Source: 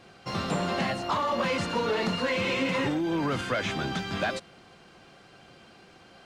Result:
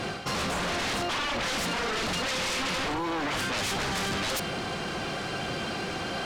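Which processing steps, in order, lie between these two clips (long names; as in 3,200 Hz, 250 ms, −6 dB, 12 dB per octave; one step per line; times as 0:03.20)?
reversed playback
downward compressor 12 to 1, threshold −40 dBFS, peak gain reduction 17 dB
reversed playback
sine wavefolder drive 15 dB, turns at −29.5 dBFS
level +3 dB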